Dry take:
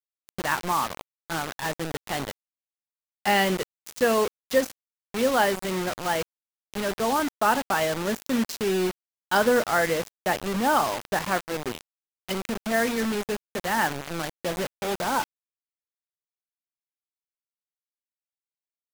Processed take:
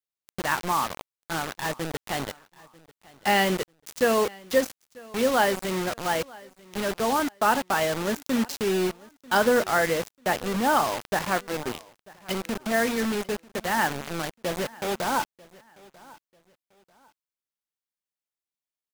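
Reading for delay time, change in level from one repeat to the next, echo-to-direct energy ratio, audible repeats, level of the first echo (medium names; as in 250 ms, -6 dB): 942 ms, -10.5 dB, -22.5 dB, 2, -23.0 dB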